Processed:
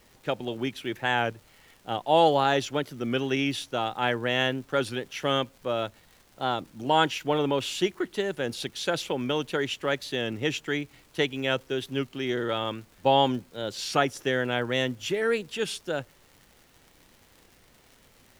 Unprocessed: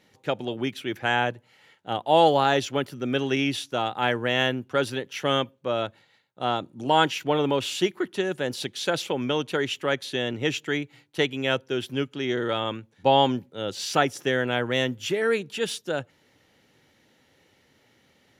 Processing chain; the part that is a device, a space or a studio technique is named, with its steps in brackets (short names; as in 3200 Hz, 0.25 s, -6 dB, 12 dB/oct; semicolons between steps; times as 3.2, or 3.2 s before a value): warped LP (record warp 33 1/3 rpm, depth 100 cents; crackle 130/s -41 dBFS; pink noise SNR 32 dB); gain -2 dB